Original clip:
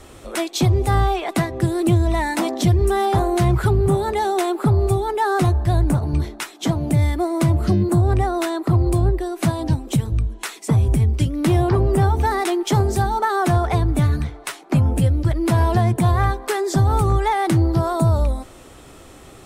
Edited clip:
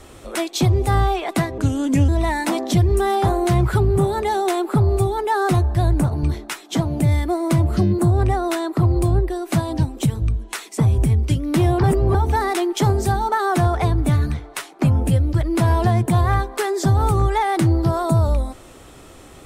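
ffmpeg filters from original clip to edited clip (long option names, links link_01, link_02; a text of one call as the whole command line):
ffmpeg -i in.wav -filter_complex "[0:a]asplit=5[link_01][link_02][link_03][link_04][link_05];[link_01]atrim=end=1.584[link_06];[link_02]atrim=start=1.58:end=1.99,asetpts=PTS-STARTPTS,asetrate=35721,aresample=44100,atrim=end_sample=22322,asetpts=PTS-STARTPTS[link_07];[link_03]atrim=start=1.986:end=11.742[link_08];[link_04]atrim=start=11.738:end=12.052,asetpts=PTS-STARTPTS,areverse[link_09];[link_05]atrim=start=12.048[link_10];[link_06][link_07]acrossfade=duration=0.004:curve1=hsin:curve2=hsin[link_11];[link_11][link_08]acrossfade=duration=0.004:curve1=hsin:curve2=hsin[link_12];[link_12][link_09]acrossfade=duration=0.004:curve1=hsin:curve2=hsin[link_13];[link_13][link_10]acrossfade=duration=0.004:curve1=hsin:curve2=hsin" out.wav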